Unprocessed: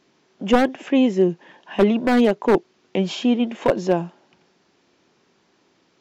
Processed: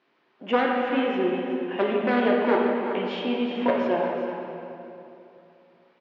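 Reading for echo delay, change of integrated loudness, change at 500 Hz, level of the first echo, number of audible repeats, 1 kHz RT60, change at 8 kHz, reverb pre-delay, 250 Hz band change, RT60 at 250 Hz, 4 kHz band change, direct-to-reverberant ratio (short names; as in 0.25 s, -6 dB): 0.375 s, -4.5 dB, -3.0 dB, -10.0 dB, 1, 2.8 s, n/a, 6 ms, -6.5 dB, 3.1 s, -4.0 dB, -3.0 dB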